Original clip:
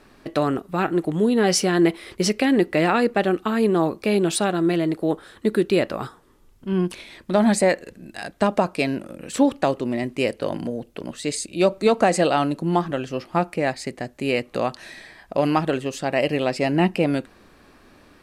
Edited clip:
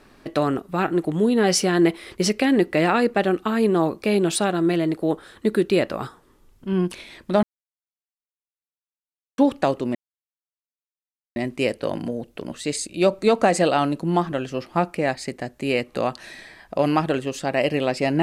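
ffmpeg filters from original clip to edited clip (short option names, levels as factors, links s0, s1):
-filter_complex "[0:a]asplit=4[s0][s1][s2][s3];[s0]atrim=end=7.43,asetpts=PTS-STARTPTS,afade=t=out:st=7.426:d=0.004:c=hsin[s4];[s1]atrim=start=7.43:end=9.38,asetpts=PTS-STARTPTS,volume=0[s5];[s2]atrim=start=9.38:end=9.95,asetpts=PTS-STARTPTS,afade=t=in:d=0.004:c=hsin,afade=t=out:st=0.566:d=0.004:c=hsin,apad=pad_dur=1.41[s6];[s3]atrim=start=9.95,asetpts=PTS-STARTPTS,afade=t=in:d=0.004:c=hsin[s7];[s4][s5][s6][s7]concat=n=4:v=0:a=1"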